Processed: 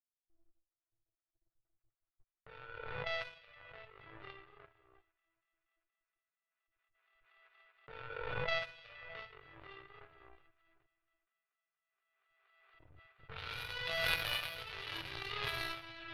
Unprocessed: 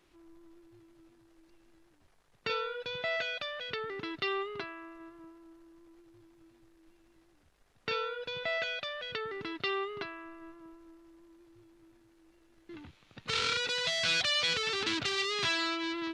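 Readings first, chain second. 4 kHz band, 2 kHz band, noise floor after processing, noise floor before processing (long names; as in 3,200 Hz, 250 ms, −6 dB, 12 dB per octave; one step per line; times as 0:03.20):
−10.5 dB, −7.0 dB, below −85 dBFS, −66 dBFS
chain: delay that plays each chunk backwards 385 ms, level −6 dB
low-shelf EQ 200 Hz +3.5 dB
rectangular room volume 580 cubic metres, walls furnished, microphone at 4.8 metres
noise gate −39 dBFS, range −10 dB
notch filter 1,000 Hz
power curve on the samples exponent 3
drawn EQ curve 130 Hz 0 dB, 200 Hz −18 dB, 560 Hz −5 dB, 2,900 Hz −3 dB, 4,500 Hz −8 dB, 7,500 Hz −28 dB, 12,000 Hz −1 dB
on a send: delay with a high-pass on its return 236 ms, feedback 81%, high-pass 2,100 Hz, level −21 dB
on the sum: low-pass that shuts in the quiet parts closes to 1,100 Hz, open at −41.5 dBFS
background raised ahead of every attack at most 30 dB per second
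level +2.5 dB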